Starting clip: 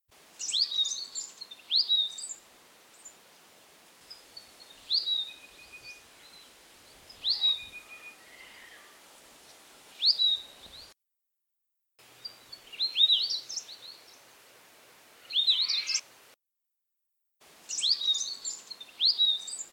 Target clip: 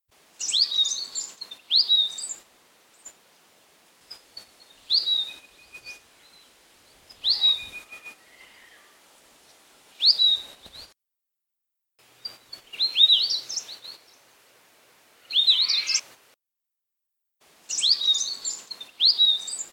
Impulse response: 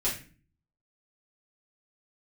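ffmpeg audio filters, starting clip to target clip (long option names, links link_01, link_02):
-af "agate=range=-7dB:threshold=-48dB:ratio=16:detection=peak,volume=6dB"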